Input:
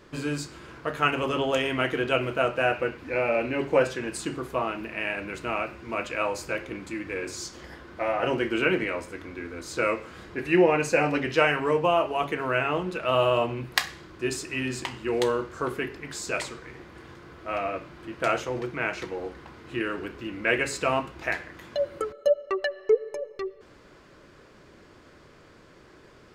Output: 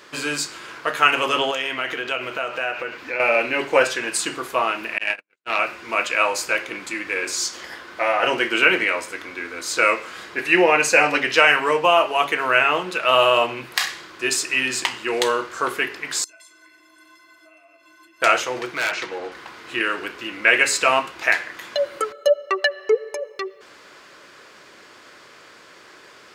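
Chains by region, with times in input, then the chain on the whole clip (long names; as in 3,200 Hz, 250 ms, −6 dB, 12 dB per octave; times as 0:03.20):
0:01.51–0:03.20: parametric band 10,000 Hz −7 dB 0.55 octaves + downward compressor 3 to 1, threshold −31 dBFS
0:04.98–0:05.59: noise gate −30 dBFS, range −59 dB + saturating transformer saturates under 1,100 Hz
0:16.24–0:18.22: high-shelf EQ 5,000 Hz +10 dB + downward compressor 12 to 1, threshold −40 dBFS + stiff-string resonator 310 Hz, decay 0.25 s, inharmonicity 0.03
0:18.74–0:19.32: high-frequency loss of the air 57 metres + gain into a clipping stage and back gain 27.5 dB
whole clip: high-pass filter 1,400 Hz 6 dB per octave; boost into a limiter +14 dB; level −1 dB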